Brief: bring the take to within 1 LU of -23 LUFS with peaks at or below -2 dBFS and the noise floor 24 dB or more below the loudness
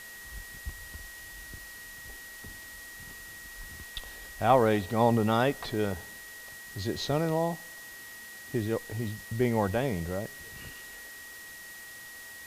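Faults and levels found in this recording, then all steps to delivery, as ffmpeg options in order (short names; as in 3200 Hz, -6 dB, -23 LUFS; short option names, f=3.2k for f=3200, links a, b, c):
steady tone 1900 Hz; tone level -45 dBFS; noise floor -46 dBFS; noise floor target -54 dBFS; loudness -29.5 LUFS; peak -9.5 dBFS; loudness target -23.0 LUFS
-> -af "bandreject=f=1.9k:w=30"
-af "afftdn=nr=8:nf=-46"
-af "volume=6.5dB"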